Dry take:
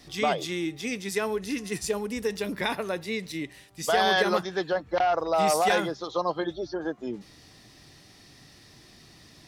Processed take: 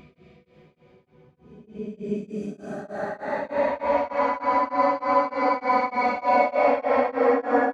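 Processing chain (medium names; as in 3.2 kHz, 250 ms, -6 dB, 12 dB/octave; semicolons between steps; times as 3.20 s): gliding tape speed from 55% -> 190%; low-pass 1.1 kHz 12 dB/octave; bass shelf 93 Hz -9.5 dB; in parallel at -2 dB: compressor with a negative ratio -32 dBFS, ratio -0.5; on the sum: rotary cabinet horn 6 Hz, later 0.7 Hz, at 2.23 s; Paulstretch 14×, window 0.10 s, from 4.01 s; on a send: echo that smears into a reverb 641 ms, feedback 46%, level -10 dB; on the sum: tremolo of two beating tones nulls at 3.3 Hz; trim +7 dB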